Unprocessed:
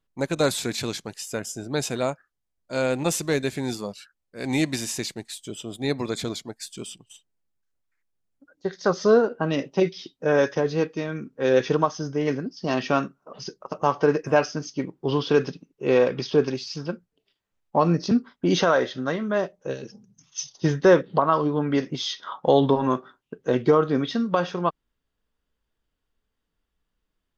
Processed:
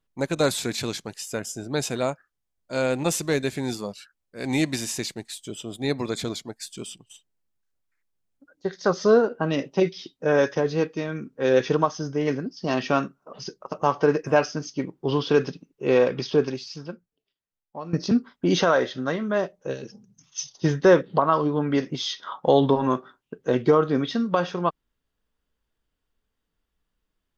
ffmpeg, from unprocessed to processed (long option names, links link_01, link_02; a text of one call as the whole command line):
ffmpeg -i in.wav -filter_complex "[0:a]asplit=2[link_01][link_02];[link_01]atrim=end=17.93,asetpts=PTS-STARTPTS,afade=type=out:start_time=16.3:duration=1.63:curve=qua:silence=0.158489[link_03];[link_02]atrim=start=17.93,asetpts=PTS-STARTPTS,afade=type=in:duration=0.004:curve=hsin:silence=0.158489[link_04];[link_03][link_04]concat=n=2:v=0:a=1" out.wav